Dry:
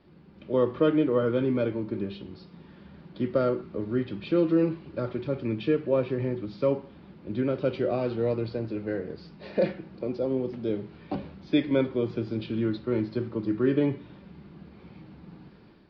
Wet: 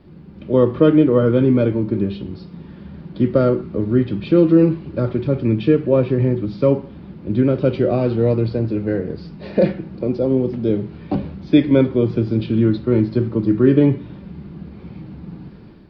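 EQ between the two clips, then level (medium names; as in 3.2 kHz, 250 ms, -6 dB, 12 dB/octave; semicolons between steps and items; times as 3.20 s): bass shelf 330 Hz +10 dB; +5.5 dB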